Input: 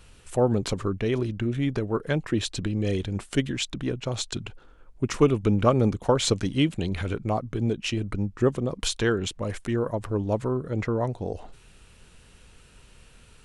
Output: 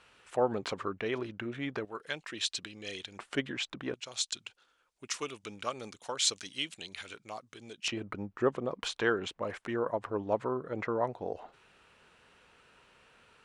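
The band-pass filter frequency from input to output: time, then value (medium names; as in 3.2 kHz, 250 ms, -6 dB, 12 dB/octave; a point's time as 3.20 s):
band-pass filter, Q 0.67
1.4 kHz
from 1.85 s 4.1 kHz
from 3.19 s 1.2 kHz
from 3.94 s 5.7 kHz
from 7.88 s 1.1 kHz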